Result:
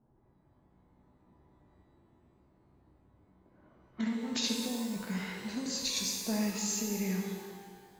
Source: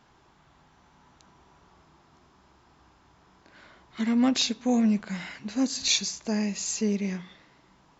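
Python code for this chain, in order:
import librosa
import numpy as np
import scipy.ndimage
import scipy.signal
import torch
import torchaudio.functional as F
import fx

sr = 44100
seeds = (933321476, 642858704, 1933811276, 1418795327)

y = fx.over_compress(x, sr, threshold_db=-26.0, ratio=-0.5)
y = fx.env_lowpass(y, sr, base_hz=400.0, full_db=-28.0)
y = fx.rev_shimmer(y, sr, seeds[0], rt60_s=1.6, semitones=12, shimmer_db=-8, drr_db=0.5)
y = y * 10.0 ** (-8.0 / 20.0)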